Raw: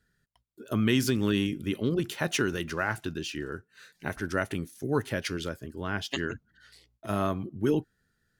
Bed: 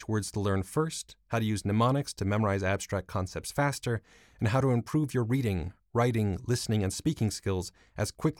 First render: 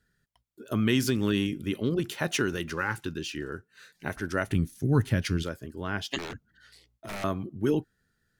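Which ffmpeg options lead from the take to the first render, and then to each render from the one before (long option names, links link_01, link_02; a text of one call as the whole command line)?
ffmpeg -i in.wav -filter_complex "[0:a]asettb=1/sr,asplit=3[link_01][link_02][link_03];[link_01]atrim=end=2.774[link_04];[link_02]atrim=start=2.77:end=3.42,asetpts=PTS-STARTPTS,afade=type=in:duration=0.004:curve=qsin,afade=type=out:start_time=0.646:duration=0.004:curve=qsin,asuperstop=centerf=680:order=8:qfactor=3.6[link_05];[link_03]atrim=start=3.416[link_06];[link_04][link_05]acrossfade=duration=0.004:curve1=hsin:curve2=qsin[link_07];[link_07][link_06]acrossfade=duration=0.004:curve1=qsin:curve2=hsin,asplit=3[link_08][link_09][link_10];[link_08]afade=type=out:start_time=4.46:duration=0.02[link_11];[link_09]asubboost=boost=4.5:cutoff=220,afade=type=in:start_time=4.46:duration=0.02,afade=type=out:start_time=5.42:duration=0.02[link_12];[link_10]afade=type=in:start_time=5.42:duration=0.02[link_13];[link_11][link_12][link_13]amix=inputs=3:normalize=0,asettb=1/sr,asplit=3[link_14][link_15][link_16];[link_14]atrim=end=6.184[link_17];[link_15]atrim=start=6.18:end=7.24,asetpts=PTS-STARTPTS,afade=type=in:duration=0.004:curve=qsin,afade=type=out:start_time=1.056:duration=0.004:curve=qsin,aeval=exprs='0.0282*(abs(mod(val(0)/0.0282+3,4)-2)-1)':channel_layout=same[link_18];[link_16]atrim=start=7.236[link_19];[link_17][link_18]acrossfade=duration=0.004:curve1=hsin:curve2=qsin[link_20];[link_20][link_19]acrossfade=duration=0.004:curve1=qsin:curve2=hsin" out.wav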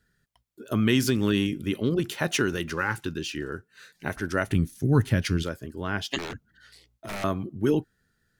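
ffmpeg -i in.wav -af "volume=2.5dB" out.wav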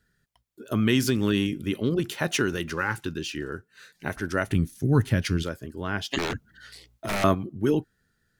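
ffmpeg -i in.wav -filter_complex "[0:a]asettb=1/sr,asplit=3[link_01][link_02][link_03];[link_01]atrim=end=6.174[link_04];[link_02]atrim=start=6.17:end=7.35,asetpts=PTS-STARTPTS,afade=type=in:duration=0.004:curve=qsin,afade=type=out:start_time=1.176:duration=0.004:curve=qsin,acontrast=67[link_05];[link_03]atrim=start=7.346[link_06];[link_04][link_05]acrossfade=duration=0.004:curve1=hsin:curve2=qsin[link_07];[link_07][link_06]acrossfade=duration=0.004:curve1=qsin:curve2=hsin" out.wav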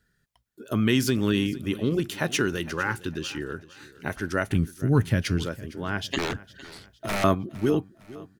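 ffmpeg -i in.wav -af "aecho=1:1:458|916|1374:0.112|0.0449|0.018" out.wav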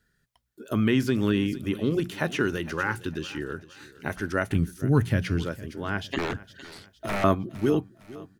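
ffmpeg -i in.wav -filter_complex "[0:a]bandreject=frequency=60:width_type=h:width=6,bandreject=frequency=120:width_type=h:width=6,bandreject=frequency=180:width_type=h:width=6,acrossover=split=2700[link_01][link_02];[link_02]acompressor=threshold=-40dB:ratio=4:attack=1:release=60[link_03];[link_01][link_03]amix=inputs=2:normalize=0" out.wav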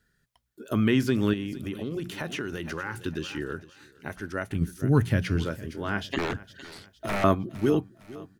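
ffmpeg -i in.wav -filter_complex "[0:a]asettb=1/sr,asplit=3[link_01][link_02][link_03];[link_01]atrim=end=1.334[link_04];[link_02]atrim=start=1.33:end=2.97,asetpts=PTS-STARTPTS,afade=type=in:duration=0.004:curve=qsin,afade=type=out:start_time=1.636:duration=0.004:curve=qsin,acompressor=threshold=-29dB:ratio=4:attack=3.2:release=140:knee=1:detection=peak[link_05];[link_03]atrim=start=2.966[link_06];[link_04][link_05]acrossfade=duration=0.004:curve1=hsin:curve2=qsin[link_07];[link_07][link_06]acrossfade=duration=0.004:curve1=qsin:curve2=hsin,asettb=1/sr,asplit=3[link_08][link_09][link_10];[link_08]atrim=end=5.334[link_11];[link_09]atrim=start=5.33:end=6.09,asetpts=PTS-STARTPTS,afade=type=in:duration=0.004:curve=qsin,afade=type=out:start_time=0.756:duration=0.004:curve=qsin,asplit=2[link_12][link_13];[link_13]adelay=25,volume=-11dB[link_14];[link_12][link_14]amix=inputs=2:normalize=0,atrim=end_sample=33516[link_15];[link_10]atrim=start=6.086[link_16];[link_11][link_15]acrossfade=duration=0.004:curve1=hsin:curve2=qsin[link_17];[link_17][link_16]acrossfade=duration=0.004:curve1=qsin:curve2=hsin,asplit=3[link_18][link_19][link_20];[link_18]atrim=end=3.702[link_21];[link_19]atrim=start=3.698:end=4.612,asetpts=PTS-STARTPTS,volume=-5.5dB[link_22];[link_20]atrim=start=4.608[link_23];[link_21][link_22]acrossfade=duration=0.004:curve1=hsin:curve2=hsin[link_24];[link_24][link_23]acrossfade=duration=0.004:curve1=hsin:curve2=hsin" out.wav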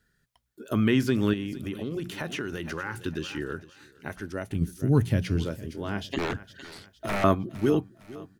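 ffmpeg -i in.wav -filter_complex "[0:a]asettb=1/sr,asplit=3[link_01][link_02][link_03];[link_01]atrim=end=4.234[link_04];[link_02]atrim=start=4.23:end=6.21,asetpts=PTS-STARTPTS,afade=type=in:duration=0.004:curve=qsin,afade=type=out:start_time=1.976:duration=0.004:curve=qsin,equalizer=frequency=1500:width=1.2:gain=-7[link_05];[link_03]atrim=start=6.206[link_06];[link_04][link_05]acrossfade=duration=0.004:curve1=hsin:curve2=qsin[link_07];[link_07][link_06]acrossfade=duration=0.004:curve1=qsin:curve2=hsin" out.wav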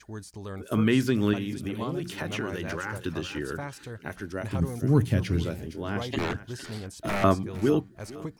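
ffmpeg -i in.wav -i bed.wav -filter_complex "[1:a]volume=-9.5dB[link_01];[0:a][link_01]amix=inputs=2:normalize=0" out.wav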